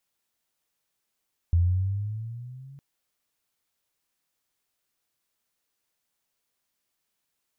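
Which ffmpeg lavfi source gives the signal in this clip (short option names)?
-f lavfi -i "aevalsrc='pow(10,(-16.5-27*t/1.26)/20)*sin(2*PI*83.9*1.26/(9*log(2)/12)*(exp(9*log(2)/12*t/1.26)-1))':d=1.26:s=44100"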